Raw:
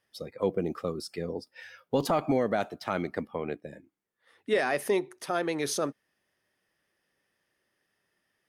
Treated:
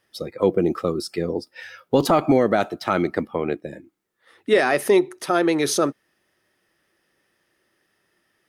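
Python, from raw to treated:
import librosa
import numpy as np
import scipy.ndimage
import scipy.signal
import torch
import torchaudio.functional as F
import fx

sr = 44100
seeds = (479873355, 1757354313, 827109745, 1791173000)

y = fx.small_body(x, sr, hz=(340.0, 1300.0, 3900.0), ring_ms=45, db=6)
y = F.gain(torch.from_numpy(y), 8.0).numpy()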